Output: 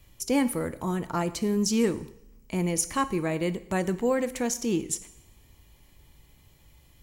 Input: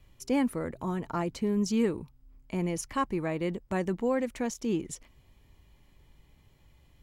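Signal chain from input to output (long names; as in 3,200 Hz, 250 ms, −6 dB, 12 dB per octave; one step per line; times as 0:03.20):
high-shelf EQ 5,200 Hz +12 dB
coupled-rooms reverb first 0.7 s, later 2 s, from −23 dB, DRR 12 dB
level +2.5 dB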